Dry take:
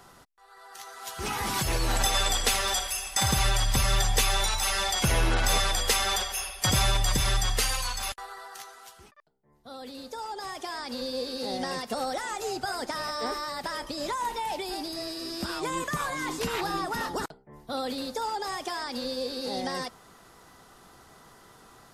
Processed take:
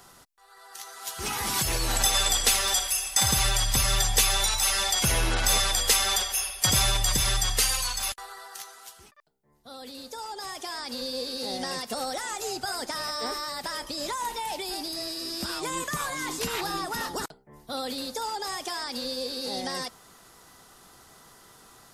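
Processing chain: high shelf 3400 Hz +8.5 dB; gain -2 dB

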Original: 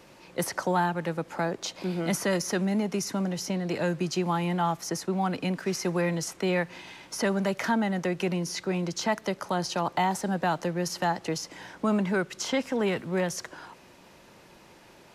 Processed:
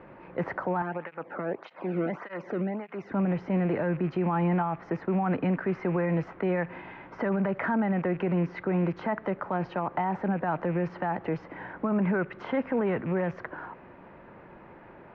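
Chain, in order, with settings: rattling part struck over -38 dBFS, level -35 dBFS; LPF 1900 Hz 24 dB/oct; limiter -24.5 dBFS, peak gain reduction 10 dB; 0.82–3.12 tape flanging out of phase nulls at 1.7 Hz, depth 1.3 ms; gain +5 dB

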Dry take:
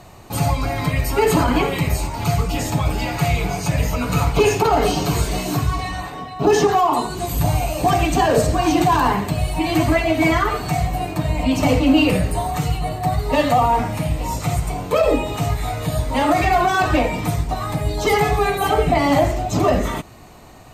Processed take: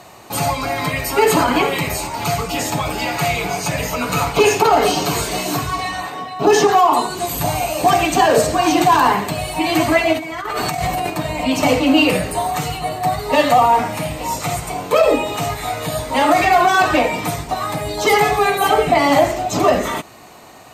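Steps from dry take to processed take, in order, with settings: HPF 400 Hz 6 dB/oct; 10.13–11.1 negative-ratio compressor -28 dBFS, ratio -1; gain +5 dB

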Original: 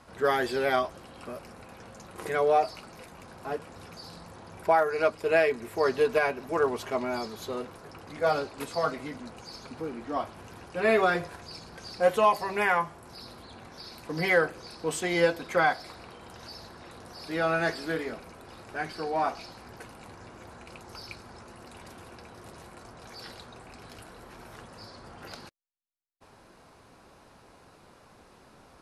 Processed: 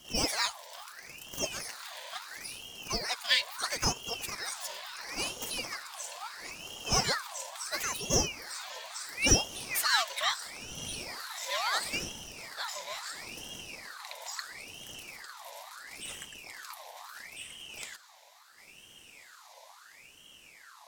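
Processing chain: speed glide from 166% -> 110%; elliptic band-stop 240–2700 Hz, stop band 40 dB; on a send: diffused feedback echo 1.7 s, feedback 50%, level -14 dB; on the sum: ring modulator with a swept carrier 1900 Hz, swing 60%, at 0.74 Hz; gain +8.5 dB

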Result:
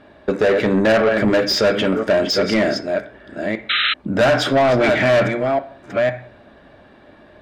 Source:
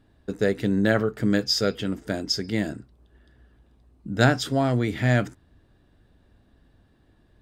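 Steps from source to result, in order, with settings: reverse delay 0.508 s, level -11 dB; high shelf 4600 Hz -11.5 dB; small resonant body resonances 600/2300 Hz, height 10 dB; on a send at -9 dB: reverb RT60 0.45 s, pre-delay 3 ms; on the sum: overdrive pedal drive 28 dB, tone 3100 Hz, clips at -2.5 dBFS; compressor 1.5:1, threshold -19 dBFS, peak gain reduction 4.5 dB; painted sound noise, 3.69–3.94, 1200–4100 Hz -18 dBFS

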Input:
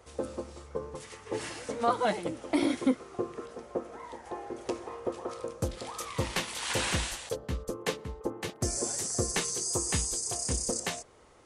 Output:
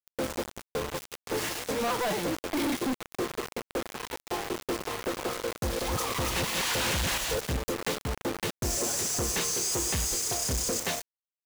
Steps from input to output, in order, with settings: 5.45–7.64 reverse delay 0.173 s, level -2 dB; bell 8700 Hz -9.5 dB 0.21 oct; companded quantiser 2-bit; gain -2 dB

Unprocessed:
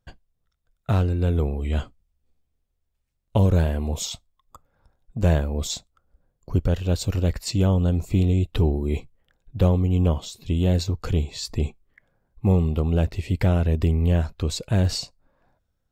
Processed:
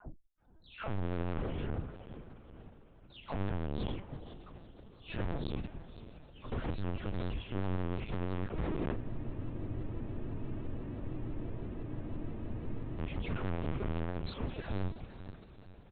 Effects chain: spectral delay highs early, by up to 0.508 s; gate with hold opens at -55 dBFS; resonant low shelf 400 Hz +6 dB, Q 1.5; in parallel at +2 dB: level quantiser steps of 21 dB; on the sum: tube stage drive 29 dB, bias 0.35; air absorption 100 m; doubler 31 ms -12 dB; diffused feedback echo 0.501 s, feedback 54%, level -12.5 dB; added harmonics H 6 -19 dB, 7 -32 dB, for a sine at -22 dBFS; LPC vocoder at 8 kHz pitch kept; spectral freeze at 8.98, 4.00 s; shaped vibrato saw up 6 Hz, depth 100 cents; gain -4.5 dB

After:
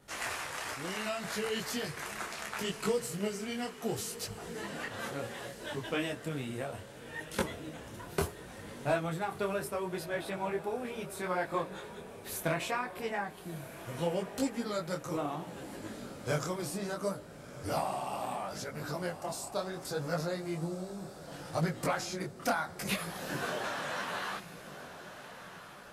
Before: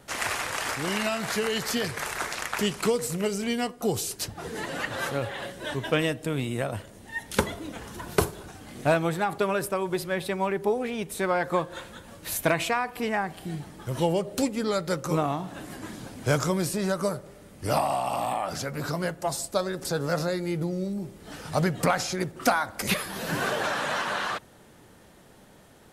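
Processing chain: on a send: diffused feedback echo 1.346 s, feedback 48%, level -12.5 dB; on the sum: detuned doubles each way 24 cents; gain -4.5 dB

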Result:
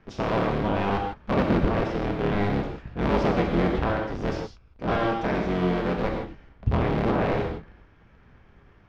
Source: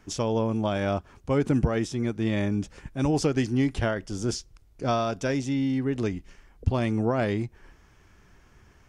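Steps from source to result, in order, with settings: cycle switcher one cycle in 3, inverted; air absorption 300 m; non-linear reverb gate 0.18 s flat, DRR 1 dB

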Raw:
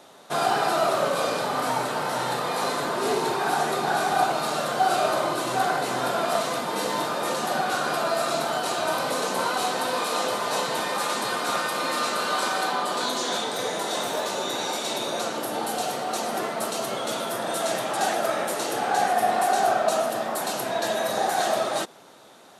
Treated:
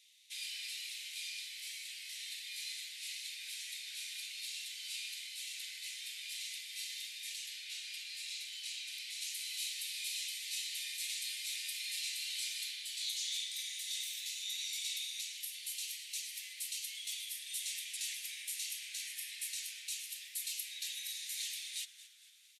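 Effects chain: steep high-pass 2100 Hz 72 dB/oct; high shelf 10000 Hz -3 dB, from 7.46 s -10 dB, from 9.21 s +4 dB; frequency-shifting echo 0.226 s, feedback 45%, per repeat -140 Hz, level -16 dB; gain -8 dB

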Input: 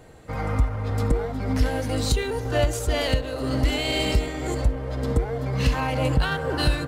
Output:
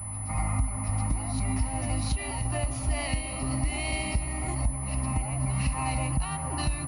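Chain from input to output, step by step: compressor 5:1, threshold -23 dBFS, peak gain reduction 8 dB; fixed phaser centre 2300 Hz, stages 8; reverse echo 0.724 s -8 dB; pulse-width modulation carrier 10000 Hz

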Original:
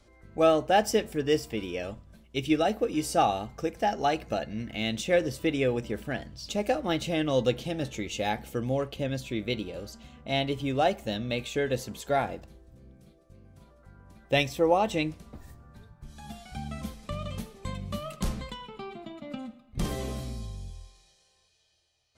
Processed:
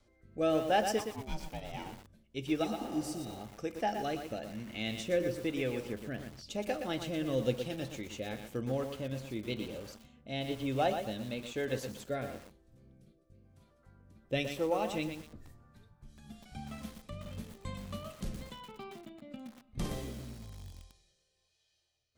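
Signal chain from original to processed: 0.98–1.91 ring modulator 680 Hz -> 270 Hz; 2.66–3.38 spectral repair 390–3700 Hz after; rotary speaker horn 1 Hz; on a send at -16 dB: reverb RT60 0.30 s, pre-delay 3 ms; on the sum: lo-fi delay 0.119 s, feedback 35%, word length 7-bit, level -6.5 dB; gain -5.5 dB

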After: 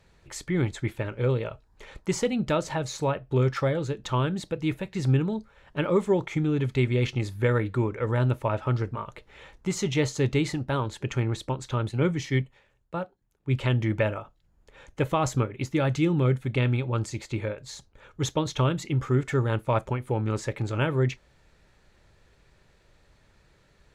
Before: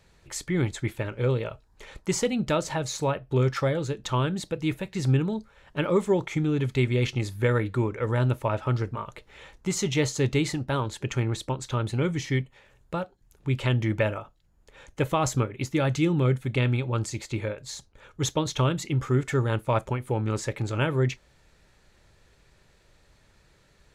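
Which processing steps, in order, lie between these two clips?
high shelf 4700 Hz -6 dB; 11.89–13.61 three-band expander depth 70%

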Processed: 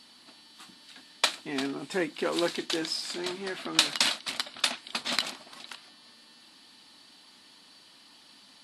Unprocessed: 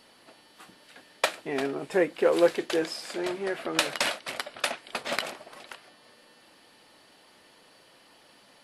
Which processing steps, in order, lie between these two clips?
graphic EQ 250/500/1000/4000/8000 Hz +9/-8/+4/+11/+7 dB; gain -5 dB

